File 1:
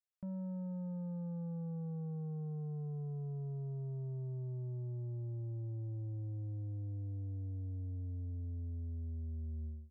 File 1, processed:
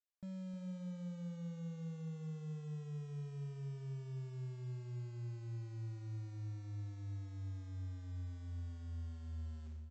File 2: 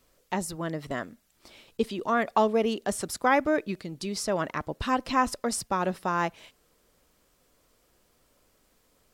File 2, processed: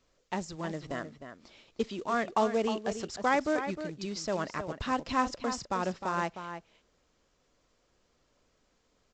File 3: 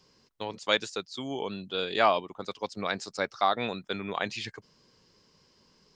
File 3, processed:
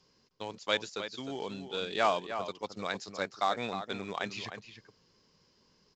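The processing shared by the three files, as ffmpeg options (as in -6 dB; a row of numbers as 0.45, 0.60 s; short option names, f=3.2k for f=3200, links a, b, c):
-filter_complex "[0:a]aresample=16000,acrusher=bits=5:mode=log:mix=0:aa=0.000001,aresample=44100,asplit=2[a][b];[b]adelay=309,volume=-9dB,highshelf=f=4k:g=-6.95[c];[a][c]amix=inputs=2:normalize=0,volume=-4.5dB"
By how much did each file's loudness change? -3.5, -4.0, -4.0 LU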